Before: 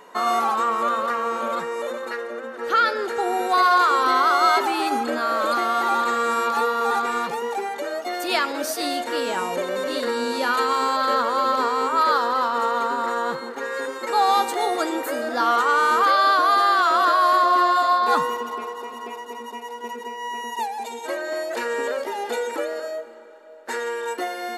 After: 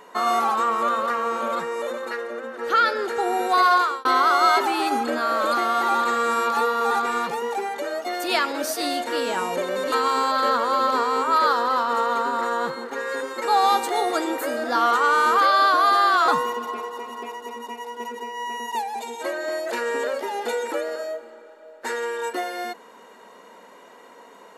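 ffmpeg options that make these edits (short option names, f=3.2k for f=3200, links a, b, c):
-filter_complex "[0:a]asplit=4[a][b][c][d];[a]atrim=end=4.05,asetpts=PTS-STARTPTS,afade=t=out:st=3.73:d=0.32[e];[b]atrim=start=4.05:end=9.922,asetpts=PTS-STARTPTS,afade=t=in:d=0.004:c=hsin[f];[c]atrim=start=10.568:end=16.932[g];[d]atrim=start=18.118[h];[e][f]concat=n=2:v=0:a=1[i];[i][g]acrossfade=d=0.004:c1=hsin:c2=hsin[j];[j][h]acrossfade=d=0.004:c1=hsin:c2=hsin"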